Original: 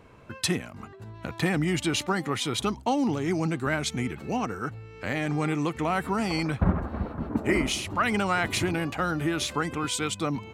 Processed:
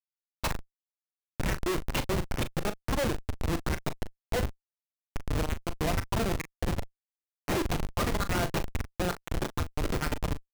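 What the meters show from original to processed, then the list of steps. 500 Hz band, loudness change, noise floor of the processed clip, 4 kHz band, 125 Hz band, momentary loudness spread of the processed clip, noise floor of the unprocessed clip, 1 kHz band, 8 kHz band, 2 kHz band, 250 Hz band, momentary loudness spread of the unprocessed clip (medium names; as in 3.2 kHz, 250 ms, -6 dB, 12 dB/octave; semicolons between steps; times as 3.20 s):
-3.5 dB, -4.5 dB, under -85 dBFS, -6.5 dB, -3.0 dB, 8 LU, -46 dBFS, -6.0 dB, -6.0 dB, -6.5 dB, -7.5 dB, 8 LU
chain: comb filter that takes the minimum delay 5.8 ms; LFO high-pass sine 2.2 Hz 350–2200 Hz; Chebyshev shaper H 3 -19 dB, 5 -25 dB, 7 -19 dB, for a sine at -10.5 dBFS; Schmitt trigger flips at -29 dBFS; doubling 39 ms -11 dB; trim +8.5 dB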